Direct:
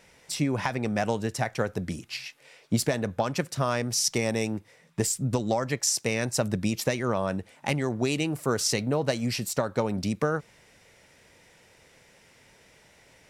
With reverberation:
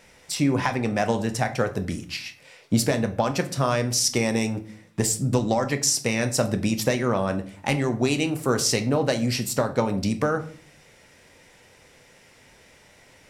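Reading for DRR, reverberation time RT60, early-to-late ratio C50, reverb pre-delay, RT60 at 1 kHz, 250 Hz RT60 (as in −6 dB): 7.0 dB, 0.45 s, 14.5 dB, 4 ms, 0.40 s, 0.70 s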